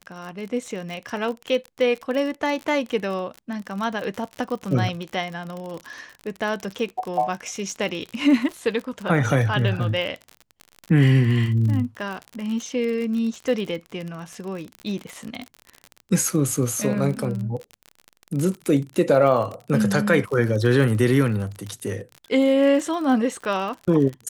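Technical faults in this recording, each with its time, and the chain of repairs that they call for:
crackle 45 per s -28 dBFS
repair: de-click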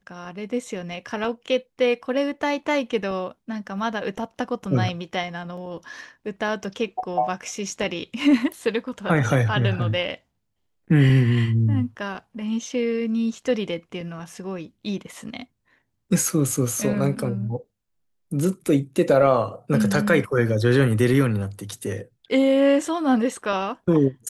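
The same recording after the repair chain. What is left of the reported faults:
nothing left

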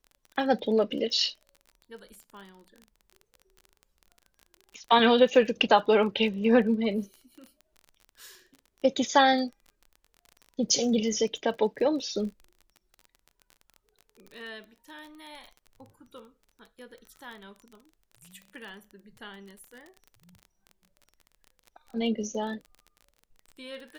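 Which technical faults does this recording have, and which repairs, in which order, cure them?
crackle 27 per s -38 dBFS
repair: de-click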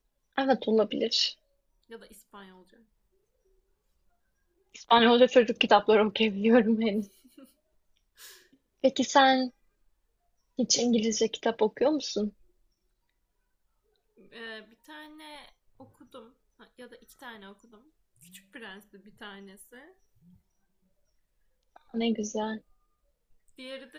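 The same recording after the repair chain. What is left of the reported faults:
nothing left

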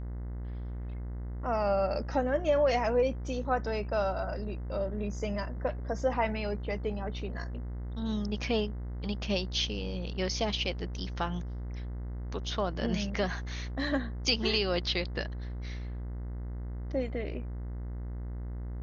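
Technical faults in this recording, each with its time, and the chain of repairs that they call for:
buzz 60 Hz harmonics 35 -37 dBFS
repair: de-hum 60 Hz, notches 35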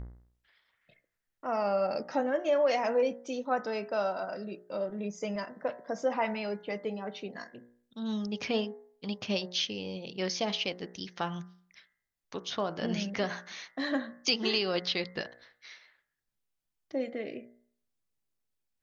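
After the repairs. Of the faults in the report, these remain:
nothing left

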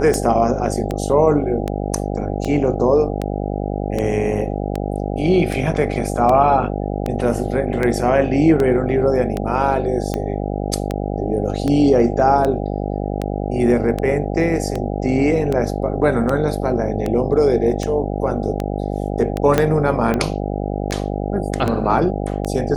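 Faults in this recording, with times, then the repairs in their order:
buzz 50 Hz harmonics 16 -23 dBFS
tick 78 rpm -9 dBFS
19.58 s: pop -2 dBFS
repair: de-click; de-hum 50 Hz, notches 16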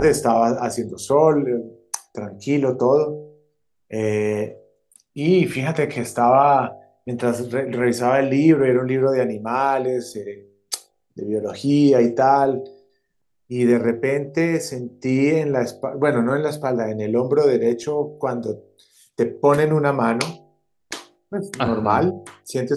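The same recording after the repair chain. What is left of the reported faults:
19.58 s: pop

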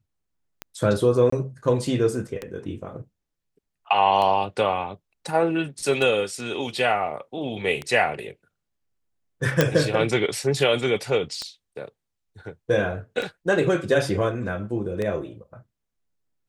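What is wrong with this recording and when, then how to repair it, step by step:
tick 33 1/3 rpm -15 dBFS
1.30–1.32 s: dropout 24 ms
9.61 s: pop -3 dBFS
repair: de-click; interpolate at 1.30 s, 24 ms

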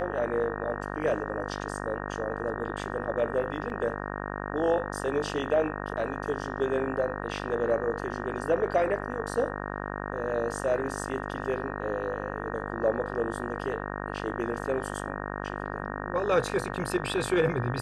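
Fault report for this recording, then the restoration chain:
buzz 50 Hz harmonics 37 -35 dBFS
3.70 s: dropout 2.8 ms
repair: de-hum 50 Hz, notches 37; interpolate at 3.70 s, 2.8 ms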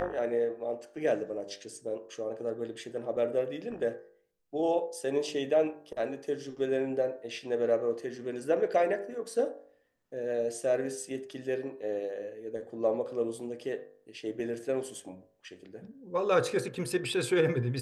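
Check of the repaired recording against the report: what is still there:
nothing left

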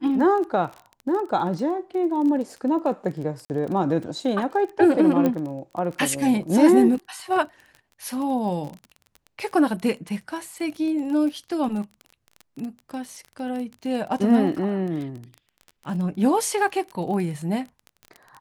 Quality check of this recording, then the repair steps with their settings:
crackle 24 per s -31 dBFS
3.45–3.50 s: dropout 49 ms
5.26 s: pop -11 dBFS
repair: de-click; interpolate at 3.45 s, 49 ms

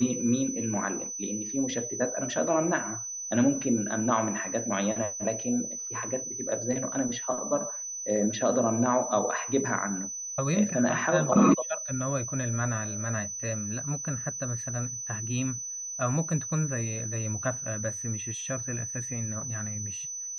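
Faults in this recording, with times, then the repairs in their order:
whine 6 kHz -34 dBFS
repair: band-stop 6 kHz, Q 30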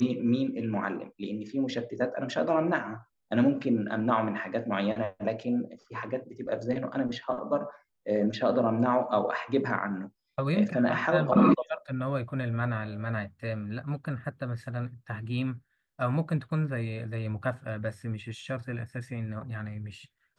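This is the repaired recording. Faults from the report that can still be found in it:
nothing left

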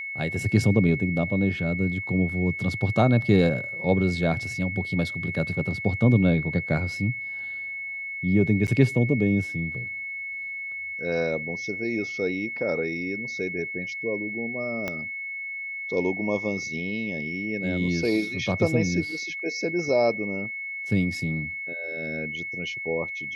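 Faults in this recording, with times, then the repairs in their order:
whine 2.2 kHz -31 dBFS
8.67–8.68 s: dropout 8.6 ms
14.88 s: pop -15 dBFS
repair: de-click; band-stop 2.2 kHz, Q 30; interpolate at 8.67 s, 8.6 ms

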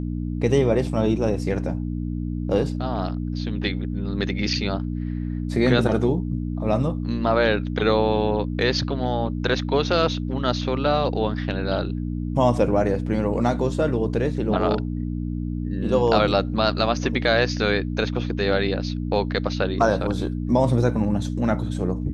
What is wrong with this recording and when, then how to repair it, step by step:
hum 60 Hz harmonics 5 -27 dBFS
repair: de-hum 60 Hz, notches 5

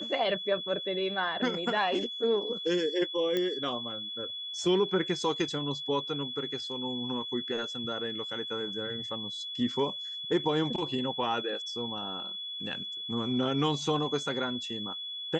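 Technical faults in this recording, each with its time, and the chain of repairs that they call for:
whine 3.4 kHz -36 dBFS
3.37 s: pop -17 dBFS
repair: de-click; band-stop 3.4 kHz, Q 30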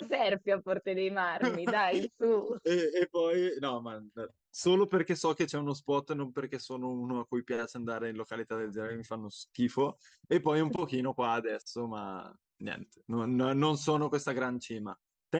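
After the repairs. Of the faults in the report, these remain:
nothing left

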